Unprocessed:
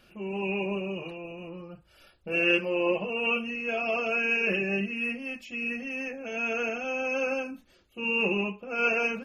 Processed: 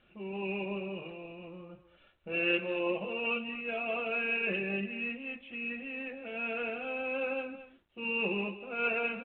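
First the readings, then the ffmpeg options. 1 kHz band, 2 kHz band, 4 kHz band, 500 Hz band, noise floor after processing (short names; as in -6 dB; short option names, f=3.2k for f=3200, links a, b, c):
-5.0 dB, -5.5 dB, -5.5 dB, -5.5 dB, -65 dBFS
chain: -filter_complex "[0:a]asplit=2[a][b];[b]adelay=220,highpass=300,lowpass=3.4k,asoftclip=type=hard:threshold=-20.5dB,volume=-12dB[c];[a][c]amix=inputs=2:normalize=0,volume=-5.5dB" -ar 8000 -c:a adpcm_g726 -b:a 40k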